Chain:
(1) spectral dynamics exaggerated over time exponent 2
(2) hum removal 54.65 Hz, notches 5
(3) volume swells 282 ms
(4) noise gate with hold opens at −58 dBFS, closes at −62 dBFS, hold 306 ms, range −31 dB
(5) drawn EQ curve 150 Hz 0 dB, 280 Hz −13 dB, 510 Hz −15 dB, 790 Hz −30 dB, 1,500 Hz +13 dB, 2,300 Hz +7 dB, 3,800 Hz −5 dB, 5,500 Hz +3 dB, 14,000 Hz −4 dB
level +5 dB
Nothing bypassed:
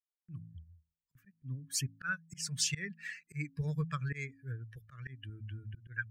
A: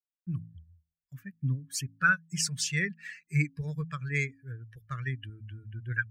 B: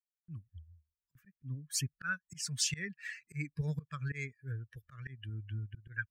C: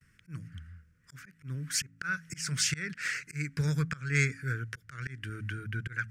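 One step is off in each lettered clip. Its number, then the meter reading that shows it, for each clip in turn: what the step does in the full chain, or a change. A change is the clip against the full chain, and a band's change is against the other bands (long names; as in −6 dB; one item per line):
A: 3, change in crest factor −2.5 dB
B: 2, 1 kHz band −2.0 dB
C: 1, change in integrated loudness +5.5 LU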